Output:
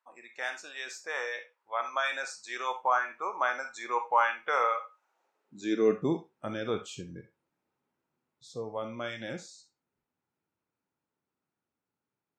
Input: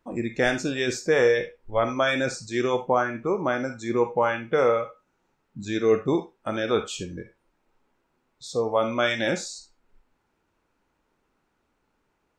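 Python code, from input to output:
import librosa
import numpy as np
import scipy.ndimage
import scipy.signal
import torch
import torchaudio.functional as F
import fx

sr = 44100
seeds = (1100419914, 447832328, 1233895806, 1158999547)

y = fx.doppler_pass(x, sr, speed_mps=6, closest_m=8.3, pass_at_s=4.06)
y = fx.filter_sweep_highpass(y, sr, from_hz=990.0, to_hz=120.0, start_s=4.92, end_s=6.27, q=1.8)
y = y * 10.0 ** (-2.5 / 20.0)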